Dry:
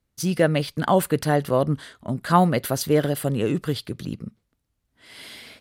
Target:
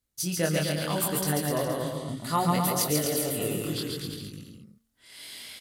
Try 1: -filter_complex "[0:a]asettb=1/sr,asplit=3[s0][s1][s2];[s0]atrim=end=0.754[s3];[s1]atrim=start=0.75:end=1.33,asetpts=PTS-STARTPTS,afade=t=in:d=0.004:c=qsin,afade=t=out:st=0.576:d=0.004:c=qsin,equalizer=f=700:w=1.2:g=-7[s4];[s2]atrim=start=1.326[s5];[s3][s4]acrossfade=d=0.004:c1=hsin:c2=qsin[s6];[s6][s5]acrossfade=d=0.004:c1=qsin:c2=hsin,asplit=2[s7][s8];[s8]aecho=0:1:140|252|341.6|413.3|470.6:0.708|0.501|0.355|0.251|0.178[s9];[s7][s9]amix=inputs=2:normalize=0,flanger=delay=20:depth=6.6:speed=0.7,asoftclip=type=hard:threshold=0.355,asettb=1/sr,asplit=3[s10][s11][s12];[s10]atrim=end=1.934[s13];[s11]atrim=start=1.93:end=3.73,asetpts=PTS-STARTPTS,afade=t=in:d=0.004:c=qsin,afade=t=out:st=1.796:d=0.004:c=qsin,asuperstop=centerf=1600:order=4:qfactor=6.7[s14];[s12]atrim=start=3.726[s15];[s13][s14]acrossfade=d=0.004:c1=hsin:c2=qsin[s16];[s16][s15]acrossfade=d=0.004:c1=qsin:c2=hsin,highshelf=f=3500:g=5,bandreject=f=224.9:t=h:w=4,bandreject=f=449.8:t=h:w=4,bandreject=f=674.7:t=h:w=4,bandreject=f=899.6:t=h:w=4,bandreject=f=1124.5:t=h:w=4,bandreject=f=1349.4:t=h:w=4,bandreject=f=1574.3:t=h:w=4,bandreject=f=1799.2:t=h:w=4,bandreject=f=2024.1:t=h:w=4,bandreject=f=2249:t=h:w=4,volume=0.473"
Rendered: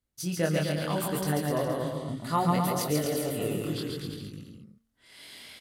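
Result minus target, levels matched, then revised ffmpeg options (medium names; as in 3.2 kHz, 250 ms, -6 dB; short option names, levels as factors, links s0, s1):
8 kHz band -5.5 dB
-filter_complex "[0:a]asettb=1/sr,asplit=3[s0][s1][s2];[s0]atrim=end=0.754[s3];[s1]atrim=start=0.75:end=1.33,asetpts=PTS-STARTPTS,afade=t=in:d=0.004:c=qsin,afade=t=out:st=0.576:d=0.004:c=qsin,equalizer=f=700:w=1.2:g=-7[s4];[s2]atrim=start=1.326[s5];[s3][s4]acrossfade=d=0.004:c1=hsin:c2=qsin[s6];[s6][s5]acrossfade=d=0.004:c1=qsin:c2=hsin,asplit=2[s7][s8];[s8]aecho=0:1:140|252|341.6|413.3|470.6:0.708|0.501|0.355|0.251|0.178[s9];[s7][s9]amix=inputs=2:normalize=0,flanger=delay=20:depth=6.6:speed=0.7,asoftclip=type=hard:threshold=0.355,asettb=1/sr,asplit=3[s10][s11][s12];[s10]atrim=end=1.934[s13];[s11]atrim=start=1.93:end=3.73,asetpts=PTS-STARTPTS,afade=t=in:d=0.004:c=qsin,afade=t=out:st=1.796:d=0.004:c=qsin,asuperstop=centerf=1600:order=4:qfactor=6.7[s14];[s12]atrim=start=3.726[s15];[s13][s14]acrossfade=d=0.004:c1=hsin:c2=qsin[s16];[s16][s15]acrossfade=d=0.004:c1=qsin:c2=hsin,highshelf=f=3500:g=13.5,bandreject=f=224.9:t=h:w=4,bandreject=f=449.8:t=h:w=4,bandreject=f=674.7:t=h:w=4,bandreject=f=899.6:t=h:w=4,bandreject=f=1124.5:t=h:w=4,bandreject=f=1349.4:t=h:w=4,bandreject=f=1574.3:t=h:w=4,bandreject=f=1799.2:t=h:w=4,bandreject=f=2024.1:t=h:w=4,bandreject=f=2249:t=h:w=4,volume=0.473"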